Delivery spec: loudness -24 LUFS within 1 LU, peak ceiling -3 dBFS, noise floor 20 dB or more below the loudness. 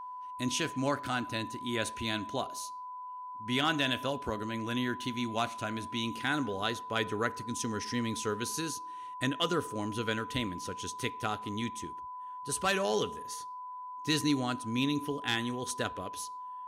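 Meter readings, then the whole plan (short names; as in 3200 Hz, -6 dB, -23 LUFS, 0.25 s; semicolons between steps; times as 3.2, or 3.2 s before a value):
steady tone 1000 Hz; tone level -40 dBFS; loudness -33.5 LUFS; peak -16.0 dBFS; loudness target -24.0 LUFS
-> notch 1000 Hz, Q 30; gain +9.5 dB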